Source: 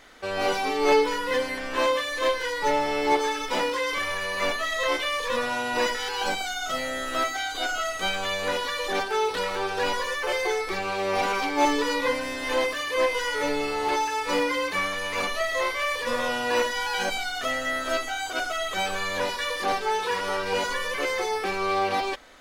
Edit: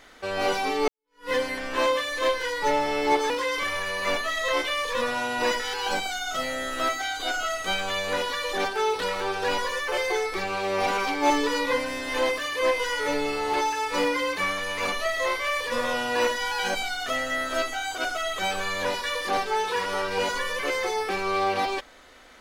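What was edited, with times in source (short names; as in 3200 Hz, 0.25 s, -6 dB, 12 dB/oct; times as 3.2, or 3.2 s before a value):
0.88–1.3 fade in exponential
3.3–3.65 cut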